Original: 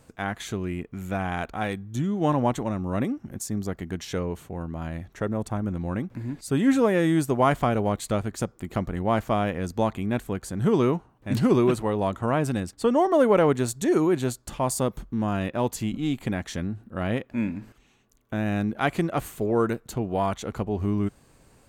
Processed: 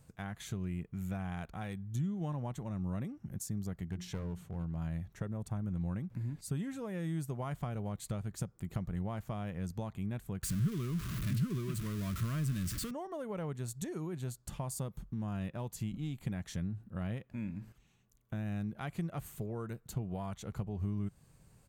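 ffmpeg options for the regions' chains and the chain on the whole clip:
-filter_complex "[0:a]asettb=1/sr,asplit=3[a][b][c];[a]atrim=end=3.864[d];[b]atrim=start=3.86:end=4.77,asetpts=PTS-STARTPTS,afade=t=in:d=0.004:c=qsin,afade=t=out:st=0.906:d=0.004:c=qsin,highshelf=f=11k:g=-8.5,bandreject=f=60:t=h:w=6,bandreject=f=120:t=h:w=6,bandreject=f=180:t=h:w=6,bandreject=f=240:t=h:w=6,bandreject=f=300:t=h:w=6,bandreject=f=360:t=h:w=6,aeval=exprs='clip(val(0),-1,0.0299)':c=same[e];[c]atrim=start=4.766[f];[d][e]acrossfade=d=0.004:c1=hsin:c2=qsin[g];[g][f]acrossfade=d=0.004:c1=qsin:c2=hsin,asettb=1/sr,asplit=3[h][i][j];[h]atrim=end=10.434[k];[i]atrim=start=10.43:end=12.91,asetpts=PTS-STARTPTS,afade=t=in:d=0.004:c=qsin,afade=t=out:st=2.476:d=0.004:c=qsin,aeval=exprs='val(0)+0.5*0.0668*sgn(val(0))':c=same,asuperstop=centerf=820:order=4:qfactor=1.8,equalizer=f=510:w=2.9:g=-14.5[l];[j]atrim=start=12.906[m];[k][l]acrossfade=d=0.004:c1=hsin:c2=qsin[n];[n][m]acrossfade=d=0.004:c1=qsin:c2=hsin,lowshelf=f=88:g=-8,acompressor=threshold=-31dB:ratio=2.5,firequalizer=gain_entry='entry(170,0);entry(250,-13);entry(12000,-6)':delay=0.05:min_phase=1,volume=1dB"

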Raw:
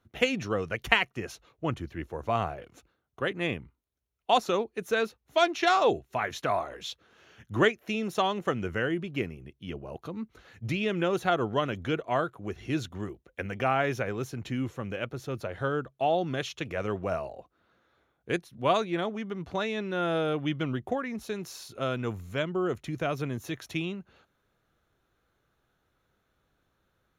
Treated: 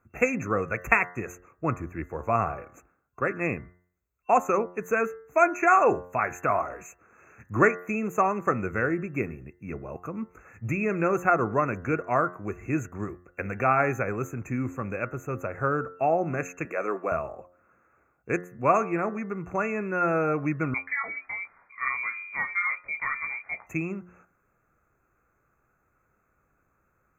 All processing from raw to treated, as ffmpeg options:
-filter_complex "[0:a]asettb=1/sr,asplit=3[a][b][c];[a]atrim=end=16.654[d];[b]atrim=start=16.65:end=17.12,asetpts=PTS-STARTPTS,afade=t=in:d=0.004:c=qsin,afade=t=out:st=0.466:d=0.004:c=qsin,highpass=f=260:w=0.5412,highpass=f=260:w=1.3066,asplit=2[e][f];[f]adelay=16,volume=-13dB[g];[e][g]amix=inputs=2:normalize=0,atrim=end_sample=20727[h];[c]atrim=start=17.116[i];[d][h]acrossfade=d=0.004:c1=hsin:c2=qsin[j];[j][i]acrossfade=d=0.004:c1=qsin:c2=hsin,asettb=1/sr,asplit=3[k][l][m];[k]atrim=end=20.744[n];[l]atrim=start=20.74:end=23.67,asetpts=PTS-STARTPTS,afade=t=in:d=0.004:c=qsin,afade=t=out:st=2.926:d=0.004:c=qsin,flanger=delay=15:depth=7.2:speed=1.7,lowpass=f=2.1k:t=q:w=0.5098,lowpass=f=2.1k:t=q:w=0.6013,lowpass=f=2.1k:t=q:w=0.9,lowpass=f=2.1k:t=q:w=2.563,afreqshift=-2500[o];[m]atrim=start=23.666[p];[n][o]acrossfade=d=0.004:c1=hsin:c2=qsin[q];[q][p]acrossfade=d=0.004:c1=qsin:c2=hsin,bandreject=f=89.22:t=h:w=4,bandreject=f=178.44:t=h:w=4,bandreject=f=267.66:t=h:w=4,bandreject=f=356.88:t=h:w=4,bandreject=f=446.1:t=h:w=4,bandreject=f=535.32:t=h:w=4,bandreject=f=624.54:t=h:w=4,bandreject=f=713.76:t=h:w=4,bandreject=f=802.98:t=h:w=4,bandreject=f=892.2:t=h:w=4,bandreject=f=981.42:t=h:w=4,bandreject=f=1.07064k:t=h:w=4,bandreject=f=1.15986k:t=h:w=4,bandreject=f=1.24908k:t=h:w=4,bandreject=f=1.3383k:t=h:w=4,bandreject=f=1.42752k:t=h:w=4,bandreject=f=1.51674k:t=h:w=4,bandreject=f=1.60596k:t=h:w=4,bandreject=f=1.69518k:t=h:w=4,bandreject=f=1.7844k:t=h:w=4,bandreject=f=1.87362k:t=h:w=4,bandreject=f=1.96284k:t=h:w=4,bandreject=f=2.05206k:t=h:w=4,afftfilt=real='re*(1-between(b*sr/4096,2700,6100))':imag='im*(1-between(b*sr/4096,2700,6100))':win_size=4096:overlap=0.75,superequalizer=10b=1.78:16b=0.251,volume=2.5dB"

